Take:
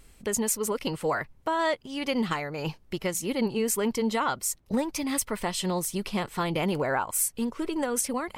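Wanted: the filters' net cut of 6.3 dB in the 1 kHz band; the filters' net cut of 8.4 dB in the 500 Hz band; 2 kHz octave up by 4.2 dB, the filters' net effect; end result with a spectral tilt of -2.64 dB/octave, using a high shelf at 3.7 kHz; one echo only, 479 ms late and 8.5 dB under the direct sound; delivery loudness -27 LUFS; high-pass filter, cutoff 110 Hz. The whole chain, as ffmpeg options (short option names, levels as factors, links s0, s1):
-af "highpass=110,equalizer=f=500:t=o:g=-9,equalizer=f=1000:t=o:g=-7.5,equalizer=f=2000:t=o:g=7,highshelf=f=3700:g=3.5,aecho=1:1:479:0.376,volume=1.12"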